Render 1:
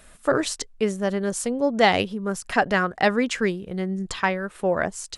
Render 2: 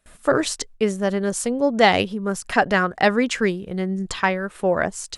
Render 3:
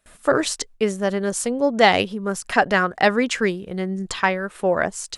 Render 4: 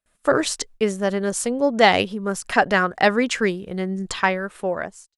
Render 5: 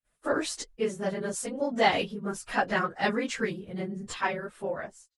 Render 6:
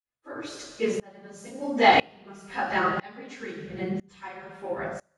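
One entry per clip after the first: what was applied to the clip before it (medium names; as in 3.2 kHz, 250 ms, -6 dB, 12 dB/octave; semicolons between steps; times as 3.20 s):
gate with hold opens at -41 dBFS; trim +2.5 dB
bass shelf 220 Hz -4.5 dB; trim +1 dB
fade out at the end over 0.80 s; gate -44 dBFS, range -18 dB
phase randomisation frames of 50 ms; trim -9 dB
reverberation RT60 1.0 s, pre-delay 3 ms, DRR -0.5 dB; sawtooth tremolo in dB swelling 1 Hz, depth 28 dB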